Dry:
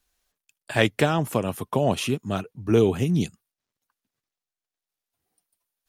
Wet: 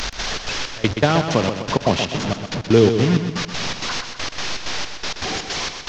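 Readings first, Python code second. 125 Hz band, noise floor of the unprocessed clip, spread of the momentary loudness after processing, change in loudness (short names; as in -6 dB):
+5.0 dB, under -85 dBFS, 11 LU, +3.0 dB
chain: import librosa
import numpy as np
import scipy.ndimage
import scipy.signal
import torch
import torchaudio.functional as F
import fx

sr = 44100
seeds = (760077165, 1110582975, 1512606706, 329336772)

y = fx.delta_mod(x, sr, bps=32000, step_db=-23.5)
y = fx.step_gate(y, sr, bpm=161, pattern='x.xx.xx..', floor_db=-24.0, edge_ms=4.5)
y = fx.echo_feedback(y, sr, ms=126, feedback_pct=51, wet_db=-8.0)
y = y * librosa.db_to_amplitude(5.5)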